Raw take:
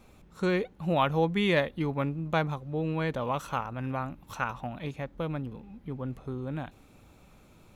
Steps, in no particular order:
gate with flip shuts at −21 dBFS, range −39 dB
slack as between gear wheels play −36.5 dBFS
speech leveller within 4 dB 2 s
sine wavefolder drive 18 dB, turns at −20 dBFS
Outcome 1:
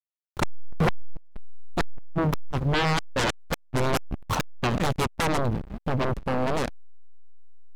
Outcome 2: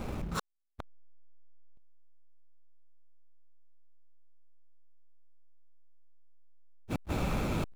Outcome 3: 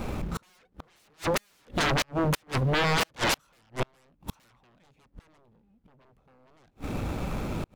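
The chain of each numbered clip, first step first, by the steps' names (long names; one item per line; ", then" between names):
gate with flip, then slack as between gear wheels, then sine wavefolder, then speech leveller
speech leveller, then sine wavefolder, then gate with flip, then slack as between gear wheels
sine wavefolder, then slack as between gear wheels, then speech leveller, then gate with flip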